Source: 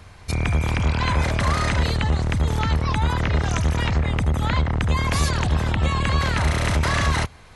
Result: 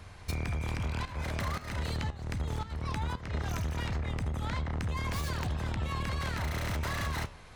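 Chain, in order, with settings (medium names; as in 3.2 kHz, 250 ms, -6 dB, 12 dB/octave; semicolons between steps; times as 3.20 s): tracing distortion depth 0.1 ms; 1.05–3.35 s: tremolo saw up 1.9 Hz, depth 95%; peak limiter -15.5 dBFS, peak gain reduction 5.5 dB; flange 0.59 Hz, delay 9.2 ms, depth 9.1 ms, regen -76%; compression, threshold -30 dBFS, peak gain reduction 8 dB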